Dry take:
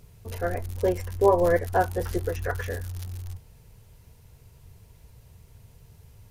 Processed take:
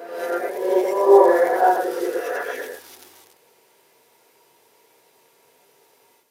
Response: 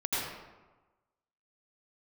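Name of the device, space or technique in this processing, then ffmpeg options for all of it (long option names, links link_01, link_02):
ghost voice: -filter_complex "[0:a]areverse[link_01];[1:a]atrim=start_sample=2205[link_02];[link_01][link_02]afir=irnorm=-1:irlink=0,areverse,highpass=frequency=330:width=0.5412,highpass=frequency=330:width=1.3066,volume=-1.5dB"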